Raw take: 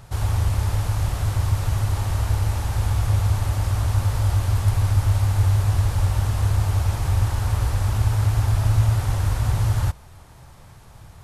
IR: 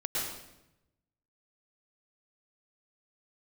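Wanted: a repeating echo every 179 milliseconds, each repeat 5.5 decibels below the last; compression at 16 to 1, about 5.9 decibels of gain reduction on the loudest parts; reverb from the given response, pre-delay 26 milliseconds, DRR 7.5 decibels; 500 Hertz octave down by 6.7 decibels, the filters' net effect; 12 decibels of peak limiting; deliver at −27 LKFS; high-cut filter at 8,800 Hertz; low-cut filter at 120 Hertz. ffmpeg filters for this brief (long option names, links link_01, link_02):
-filter_complex "[0:a]highpass=120,lowpass=8800,equalizer=frequency=500:width_type=o:gain=-9,acompressor=threshold=-25dB:ratio=16,alimiter=level_in=6.5dB:limit=-24dB:level=0:latency=1,volume=-6.5dB,aecho=1:1:179|358|537|716|895|1074|1253:0.531|0.281|0.149|0.079|0.0419|0.0222|0.0118,asplit=2[link_01][link_02];[1:a]atrim=start_sample=2205,adelay=26[link_03];[link_02][link_03]afir=irnorm=-1:irlink=0,volume=-13.5dB[link_04];[link_01][link_04]amix=inputs=2:normalize=0,volume=9.5dB"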